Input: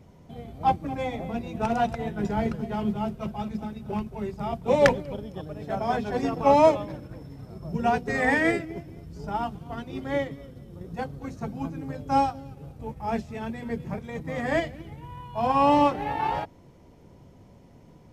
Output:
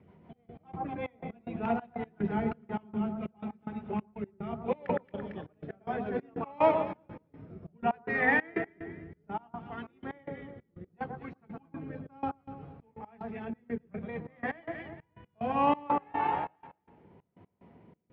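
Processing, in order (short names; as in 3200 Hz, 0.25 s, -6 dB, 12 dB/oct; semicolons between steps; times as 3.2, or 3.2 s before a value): speaker cabinet 120–2700 Hz, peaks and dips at 130 Hz -8 dB, 280 Hz -5 dB, 560 Hz -6 dB; de-hum 217.3 Hz, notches 6; rotary speaker horn 6.3 Hz, later 0.65 Hz, at 2.22; echo with dull and thin repeats by turns 0.113 s, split 1500 Hz, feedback 50%, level -7 dB; step gate "xxxx..x.." 184 bpm -24 dB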